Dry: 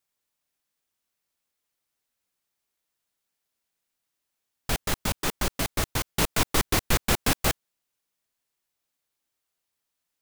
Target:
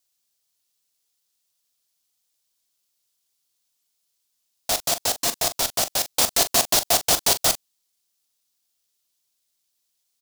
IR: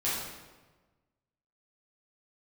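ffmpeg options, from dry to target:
-filter_complex "[0:a]highshelf=f=3.2k:t=q:w=1.5:g=9.5,aeval=exprs='val(0)*sin(2*PI*690*n/s)':c=same,asplit=2[a][b];[b]adelay=41,volume=-12dB[c];[a][c]amix=inputs=2:normalize=0,volume=1.5dB"

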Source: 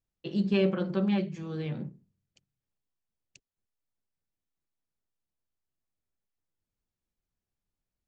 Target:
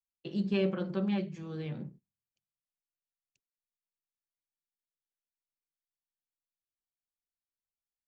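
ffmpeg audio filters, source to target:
-af "agate=range=-18dB:threshold=-48dB:ratio=16:detection=peak,volume=-4dB"

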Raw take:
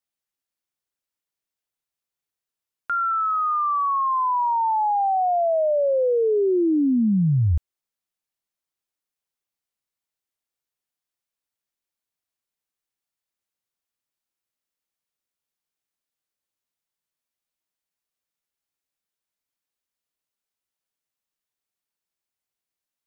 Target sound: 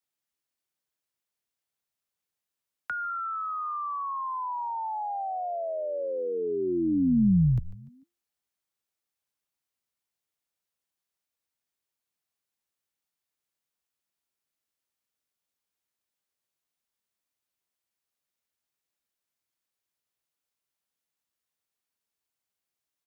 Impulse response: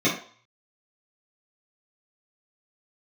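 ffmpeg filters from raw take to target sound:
-filter_complex "[0:a]afreqshift=42,acrossover=split=130|290|910[a][b][c][d];[a]acompressor=threshold=-37dB:ratio=6[e];[e][b][c][d]amix=inputs=4:normalize=0,asplit=4[f][g][h][i];[g]adelay=147,afreqshift=-130,volume=-15dB[j];[h]adelay=294,afreqshift=-260,volume=-24.1dB[k];[i]adelay=441,afreqshift=-390,volume=-33.2dB[l];[f][j][k][l]amix=inputs=4:normalize=0,acrossover=split=240[m][n];[n]acompressor=threshold=-32dB:ratio=6[o];[m][o]amix=inputs=2:normalize=0"

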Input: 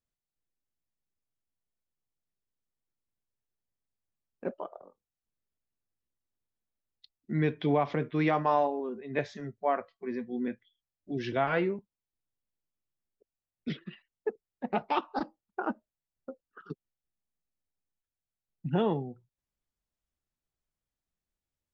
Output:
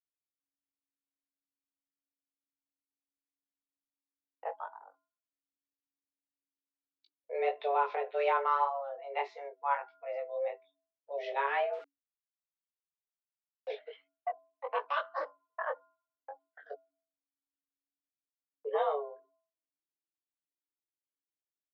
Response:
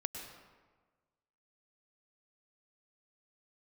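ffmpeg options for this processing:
-filter_complex "[0:a]agate=range=-18dB:threshold=-58dB:ratio=16:detection=peak,bandreject=f=376.7:t=h:w=4,bandreject=f=753.4:t=h:w=4,bandreject=f=1.1301k:t=h:w=4,flanger=delay=18.5:depth=2.9:speed=1.7,asettb=1/sr,asplit=3[a][b][c];[a]atrim=end=11.734[d];[b]atrim=start=11.73:end=13.68,asetpts=PTS-STARTPTS,afade=t=in:d=0.004:c=qsin,afade=t=out:st=1.946:d=0.004:c=qsin,aeval=exprs='val(0)*gte(abs(val(0)),0.00447)':c=same[e];[c]atrim=start=13.676[f];[d][e]acrossfade=d=0.004:c1=hsin:c2=qsin[g];[g][f]acrossfade=d=0.004:c1=qsin:c2=hsin,afreqshift=280,highpass=230,lowpass=3.2k"

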